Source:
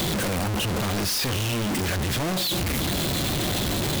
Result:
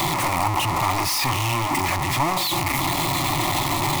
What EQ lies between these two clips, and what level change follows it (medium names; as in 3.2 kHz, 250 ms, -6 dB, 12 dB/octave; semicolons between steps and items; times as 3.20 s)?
high-order bell 1.4 kHz +15 dB; static phaser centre 310 Hz, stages 8; +2.5 dB